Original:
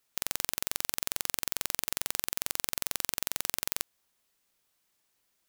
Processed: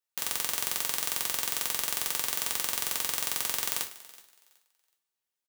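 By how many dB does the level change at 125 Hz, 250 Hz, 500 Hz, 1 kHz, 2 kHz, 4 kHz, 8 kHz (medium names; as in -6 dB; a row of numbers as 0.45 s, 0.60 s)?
-2.0 dB, -0.5 dB, +1.5 dB, +4.0 dB, +3.0 dB, +3.5 dB, +3.5 dB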